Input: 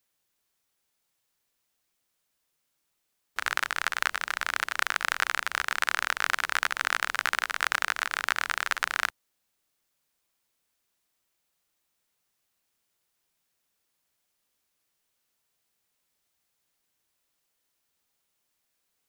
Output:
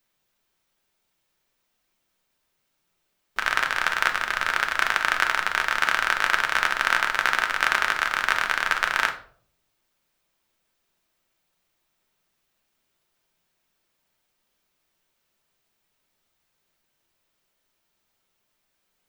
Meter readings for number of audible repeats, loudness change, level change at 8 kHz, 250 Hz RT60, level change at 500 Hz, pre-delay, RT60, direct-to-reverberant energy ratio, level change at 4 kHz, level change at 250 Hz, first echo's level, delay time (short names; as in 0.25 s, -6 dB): none, +5.5 dB, +0.5 dB, 0.75 s, +7.0 dB, 3 ms, 0.55 s, 4.0 dB, +4.0 dB, +7.5 dB, none, none